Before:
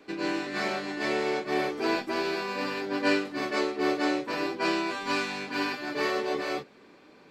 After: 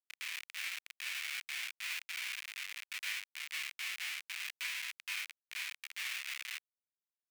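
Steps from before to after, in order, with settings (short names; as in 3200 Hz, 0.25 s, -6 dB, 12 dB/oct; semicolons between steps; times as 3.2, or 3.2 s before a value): Schmitt trigger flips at -25.5 dBFS; ladder high-pass 2000 Hz, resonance 55%; gain +6.5 dB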